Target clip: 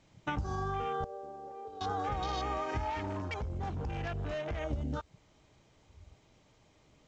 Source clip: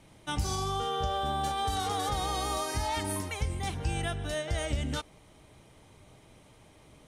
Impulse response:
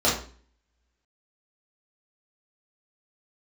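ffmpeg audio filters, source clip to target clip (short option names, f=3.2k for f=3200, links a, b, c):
-filter_complex "[0:a]afwtdn=0.0126,acompressor=threshold=-40dB:ratio=5,asettb=1/sr,asplit=3[a][b][c];[a]atrim=end=1.044[d];[b]atrim=start=1.04:end=1.81,asetpts=PTS-STARTPTS,afade=t=in:d=0.004:c=qsin,afade=t=out:st=0.766:d=0.004:c=qsin,bandpass=f=470:t=q:w=3.6:csg=0[e];[c]atrim=start=1.806[f];[d][e]acrossfade=d=0.004:c1=hsin:c2=qsin[g];[g][f]acrossfade=d=0.004:c1=qsin:c2=hsin,asettb=1/sr,asplit=3[h][i][j];[h]atrim=end=2.904[k];[i]atrim=start=2.9:end=4.6,asetpts=PTS-STARTPTS,afade=t=in:d=0.004:c=qsin,afade=t=out:st=1.696:d=0.004:c=qsin,asoftclip=type=hard:threshold=-40dB[l];[j]atrim=start=4.596[m];[k][l]acrossfade=d=0.004:c1=hsin:c2=qsin[n];[n][m]acrossfade=d=0.004:c1=qsin:c2=hsin,volume=7.5dB" -ar 16000 -c:a pcm_alaw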